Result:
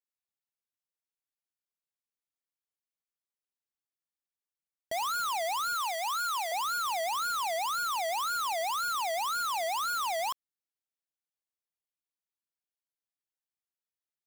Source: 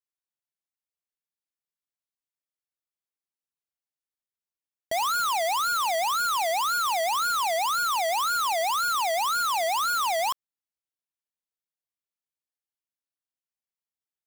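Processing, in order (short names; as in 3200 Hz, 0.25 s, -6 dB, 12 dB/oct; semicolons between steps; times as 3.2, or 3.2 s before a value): 5.75–6.52 HPF 690 Hz 24 dB/oct; gain -6 dB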